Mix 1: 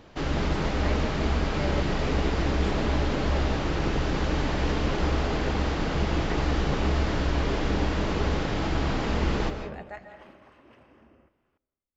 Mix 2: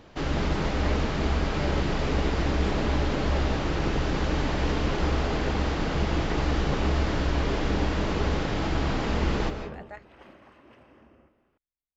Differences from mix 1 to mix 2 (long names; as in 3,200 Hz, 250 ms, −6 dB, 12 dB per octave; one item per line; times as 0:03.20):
speech: send off
second sound: send +9.5 dB